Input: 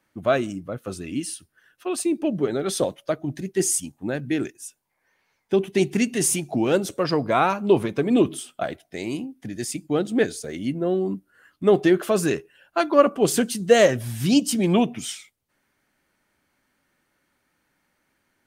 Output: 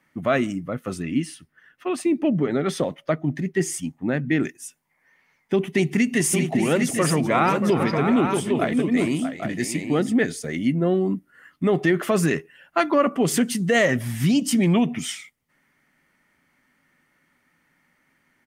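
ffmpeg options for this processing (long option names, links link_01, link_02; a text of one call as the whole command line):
ffmpeg -i in.wav -filter_complex "[0:a]asettb=1/sr,asplit=3[link_01][link_02][link_03];[link_01]atrim=end=1.024[link_04];[link_02]atrim=start=1.02:end=4.44,asetpts=PTS-STARTPTS,afade=type=in:duration=0.004:curve=qsin,afade=type=out:start_time=3.416:duration=0.004:curve=qsin,equalizer=frequency=11000:width_type=o:width=1.9:gain=-9[link_05];[link_03]atrim=start=4.436[link_06];[link_04][link_05]acrossfade=duration=0.004:curve1=hsin:curve2=qsin[link_07];[link_07][link_06]acrossfade=duration=0.004:curve1=qsin:curve2=hsin,asplit=3[link_08][link_09][link_10];[link_08]afade=type=out:start_time=6.19:duration=0.02[link_11];[link_09]aecho=1:1:386|631|806:0.211|0.316|0.422,afade=type=in:start_time=6.19:duration=0.02,afade=type=out:start_time=10.12:duration=0.02[link_12];[link_10]afade=type=in:start_time=10.12:duration=0.02[link_13];[link_11][link_12][link_13]amix=inputs=3:normalize=0,equalizer=frequency=160:width_type=o:width=0.33:gain=10,equalizer=frequency=250:width_type=o:width=0.33:gain=7,equalizer=frequency=1600:width_type=o:width=0.33:gain=-11,equalizer=frequency=2500:width_type=o:width=0.33:gain=-3,equalizer=frequency=4000:width_type=o:width=0.33:gain=-4,alimiter=limit=-12.5dB:level=0:latency=1:release=83,equalizer=frequency=1800:width=1.4:gain=15" out.wav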